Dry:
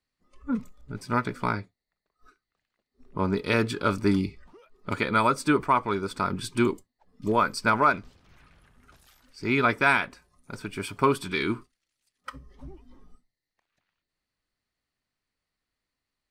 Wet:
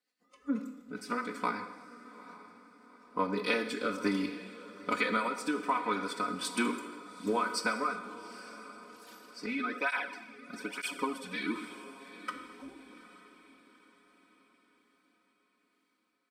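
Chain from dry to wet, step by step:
high-pass filter 310 Hz 12 dB per octave
comb filter 4 ms, depth 92%
downward compressor 5 to 1, threshold −26 dBFS, peak gain reduction 12.5 dB
rotating-speaker cabinet horn 8 Hz, later 1.2 Hz, at 0:02.70
feedback delay with all-pass diffusion 843 ms, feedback 45%, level −16 dB
reverb whose tail is shaped and stops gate 410 ms falling, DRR 7 dB
0:09.46–0:11.56: through-zero flanger with one copy inverted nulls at 1.1 Hz, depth 3.2 ms

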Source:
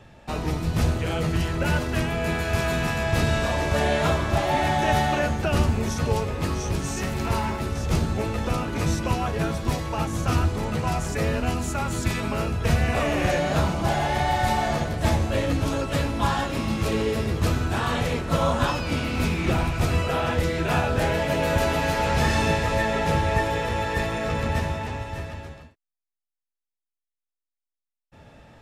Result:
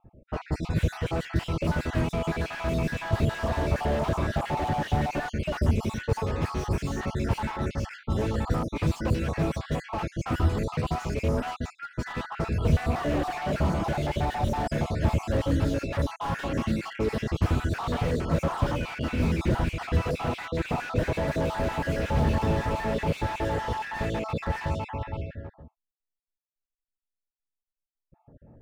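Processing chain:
time-frequency cells dropped at random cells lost 40%
low-pass that shuts in the quiet parts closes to 410 Hz, open at −22 dBFS
slew-rate limiting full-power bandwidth 35 Hz

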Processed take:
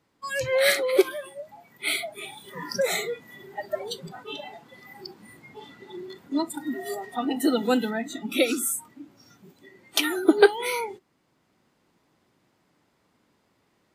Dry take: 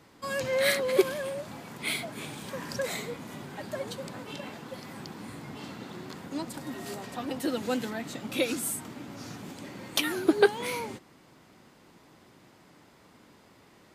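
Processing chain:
noise reduction from a noise print of the clip's start 20 dB
speech leveller within 4 dB 2 s
level +5.5 dB

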